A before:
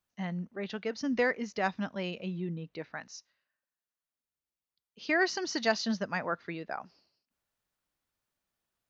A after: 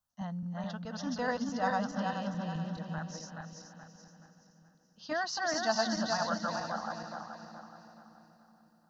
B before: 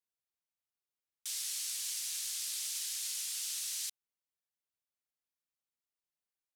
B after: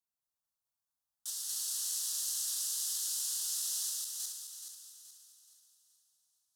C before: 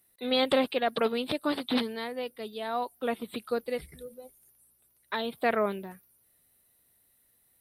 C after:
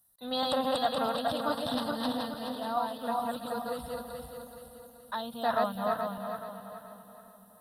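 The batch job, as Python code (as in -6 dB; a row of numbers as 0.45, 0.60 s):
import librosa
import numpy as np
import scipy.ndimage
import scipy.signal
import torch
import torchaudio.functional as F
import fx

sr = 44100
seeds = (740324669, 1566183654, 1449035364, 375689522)

y = fx.reverse_delay_fb(x, sr, ms=213, feedback_pct=62, wet_db=-0.5)
y = fx.fixed_phaser(y, sr, hz=940.0, stages=4)
y = fx.echo_split(y, sr, split_hz=410.0, low_ms=547, high_ms=333, feedback_pct=52, wet_db=-14.0)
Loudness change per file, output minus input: -1.5, +2.0, -2.0 LU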